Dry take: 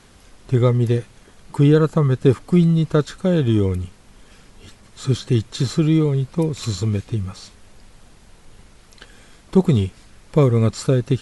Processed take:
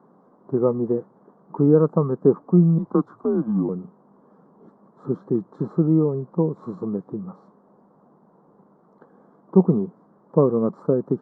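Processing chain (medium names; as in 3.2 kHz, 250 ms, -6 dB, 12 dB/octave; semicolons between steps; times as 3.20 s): 2.78–3.69 s: frequency shift -130 Hz; elliptic band-pass 170–1100 Hz, stop band 40 dB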